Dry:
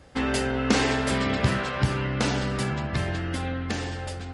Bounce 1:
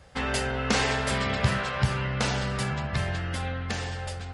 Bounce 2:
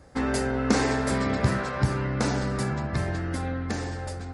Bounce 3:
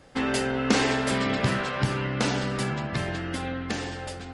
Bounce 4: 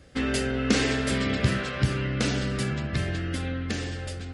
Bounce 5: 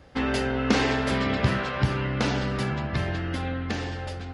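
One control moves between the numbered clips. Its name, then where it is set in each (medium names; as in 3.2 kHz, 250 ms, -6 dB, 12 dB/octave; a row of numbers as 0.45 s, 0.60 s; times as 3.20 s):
peaking EQ, frequency: 300 Hz, 3 kHz, 71 Hz, 890 Hz, 8.5 kHz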